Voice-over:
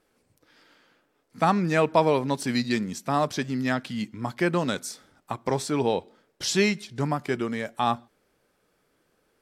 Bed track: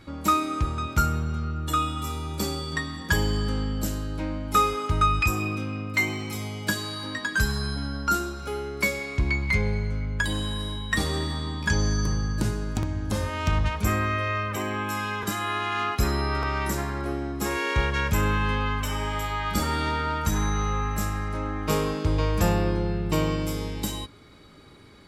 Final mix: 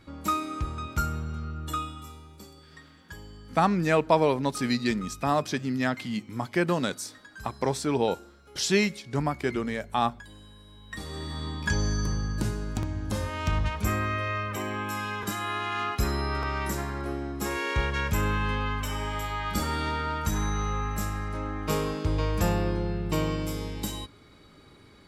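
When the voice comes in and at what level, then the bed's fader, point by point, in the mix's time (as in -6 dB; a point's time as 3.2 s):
2.15 s, -1.0 dB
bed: 1.7 s -5.5 dB
2.51 s -21 dB
10.64 s -21 dB
11.44 s -3 dB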